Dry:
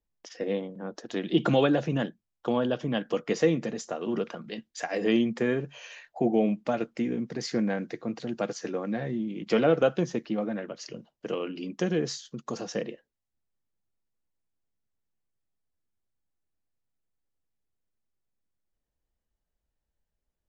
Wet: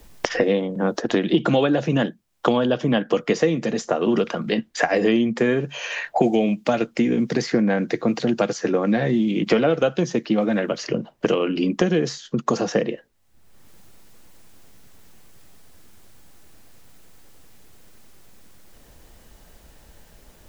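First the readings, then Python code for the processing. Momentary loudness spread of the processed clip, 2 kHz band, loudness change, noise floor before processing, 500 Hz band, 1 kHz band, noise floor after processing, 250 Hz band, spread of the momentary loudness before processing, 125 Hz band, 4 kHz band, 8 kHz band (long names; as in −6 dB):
6 LU, +9.5 dB, +7.5 dB, −85 dBFS, +7.5 dB, +9.0 dB, −54 dBFS, +8.0 dB, 13 LU, +7.0 dB, +8.0 dB, can't be measured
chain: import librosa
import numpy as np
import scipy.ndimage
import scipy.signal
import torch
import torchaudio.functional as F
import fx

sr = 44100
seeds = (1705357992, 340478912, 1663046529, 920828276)

y = fx.band_squash(x, sr, depth_pct=100)
y = F.gain(torch.from_numpy(y), 7.5).numpy()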